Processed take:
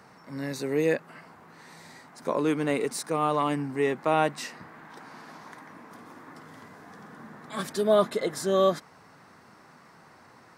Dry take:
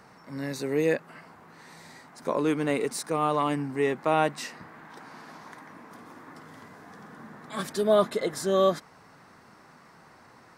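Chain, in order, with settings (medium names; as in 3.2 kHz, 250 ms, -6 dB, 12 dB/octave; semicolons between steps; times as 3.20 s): high-pass 56 Hz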